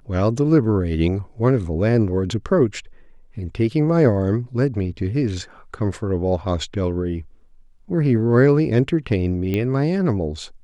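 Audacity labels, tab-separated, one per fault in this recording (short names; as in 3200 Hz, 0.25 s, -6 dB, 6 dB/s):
9.540000	9.540000	pop -12 dBFS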